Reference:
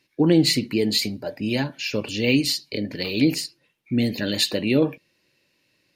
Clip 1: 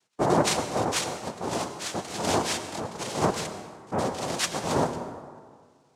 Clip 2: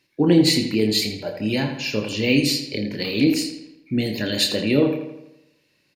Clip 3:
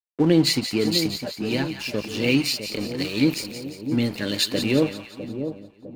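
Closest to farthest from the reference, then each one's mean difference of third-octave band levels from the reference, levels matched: 2, 3, 1; 4.5, 7.0, 13.5 decibels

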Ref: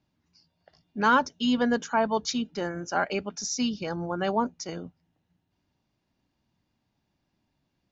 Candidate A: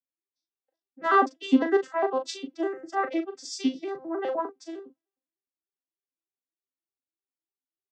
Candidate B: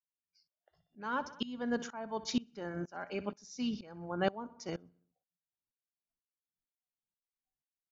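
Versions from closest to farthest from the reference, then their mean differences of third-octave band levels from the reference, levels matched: B, A; 5.0, 9.5 decibels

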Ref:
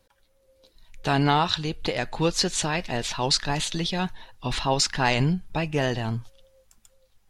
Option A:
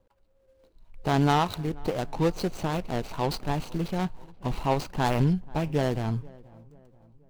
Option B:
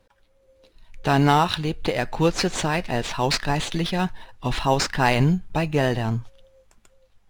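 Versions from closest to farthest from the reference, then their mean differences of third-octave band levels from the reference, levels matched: B, A; 3.5, 6.0 decibels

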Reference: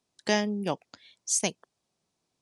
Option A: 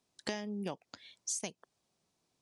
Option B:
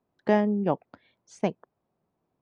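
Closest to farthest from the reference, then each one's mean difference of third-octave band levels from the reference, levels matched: A, B; 3.5, 5.5 decibels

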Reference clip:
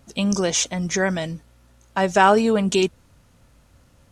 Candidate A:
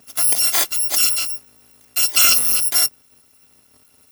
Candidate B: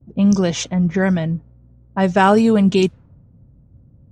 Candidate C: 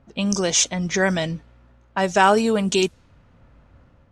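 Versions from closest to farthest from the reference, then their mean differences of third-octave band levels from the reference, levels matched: C, B, A; 2.0, 5.5, 16.0 decibels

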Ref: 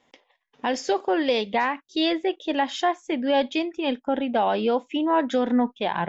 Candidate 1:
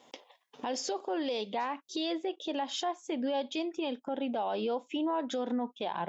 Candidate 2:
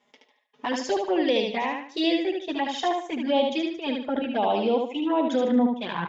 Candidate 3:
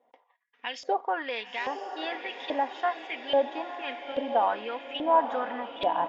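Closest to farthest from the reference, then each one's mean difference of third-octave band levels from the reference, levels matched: 1, 2, 3; 2.5, 5.0, 7.5 decibels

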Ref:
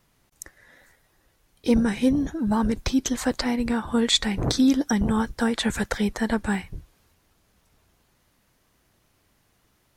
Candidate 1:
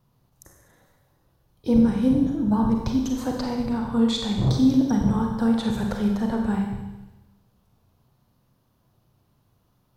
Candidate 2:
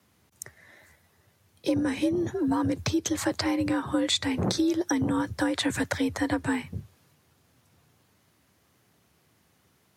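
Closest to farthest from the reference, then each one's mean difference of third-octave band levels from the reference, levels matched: 2, 1; 4.5, 6.5 decibels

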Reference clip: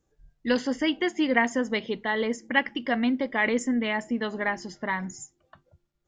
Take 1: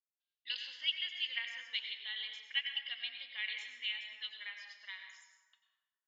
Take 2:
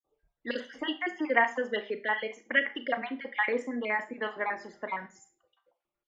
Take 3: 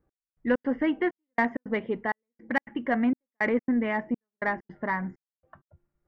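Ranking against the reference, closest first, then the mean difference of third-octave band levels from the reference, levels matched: 2, 3, 1; 5.5, 8.0, 14.5 decibels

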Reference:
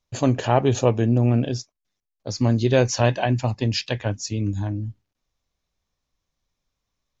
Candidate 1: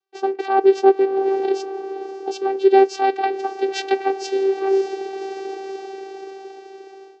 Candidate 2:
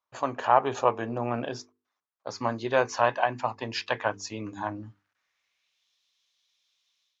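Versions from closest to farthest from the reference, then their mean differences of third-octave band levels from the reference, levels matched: 2, 1; 5.5, 12.0 decibels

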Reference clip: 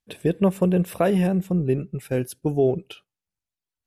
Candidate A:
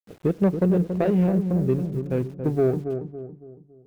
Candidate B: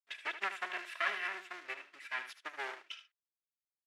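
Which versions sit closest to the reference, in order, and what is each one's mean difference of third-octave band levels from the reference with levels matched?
A, B; 6.5, 17.0 decibels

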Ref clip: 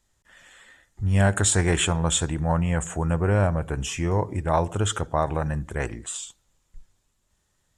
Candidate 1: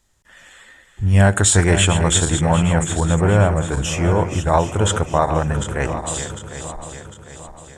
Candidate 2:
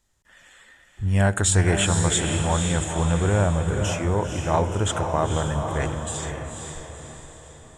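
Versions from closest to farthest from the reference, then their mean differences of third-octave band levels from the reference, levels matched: 1, 2; 4.5, 6.0 decibels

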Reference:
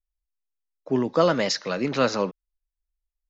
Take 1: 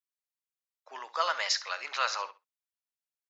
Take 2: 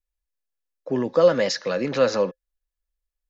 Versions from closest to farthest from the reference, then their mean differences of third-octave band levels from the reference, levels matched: 2, 1; 2.5, 11.5 decibels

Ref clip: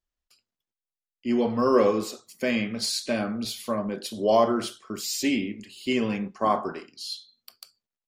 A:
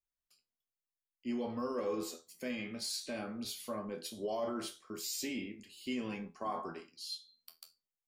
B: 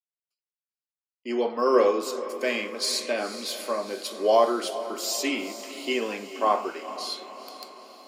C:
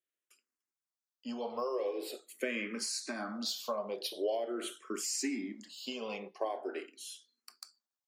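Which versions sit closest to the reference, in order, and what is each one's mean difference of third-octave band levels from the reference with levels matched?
A, C, B; 3.5, 7.0, 10.0 decibels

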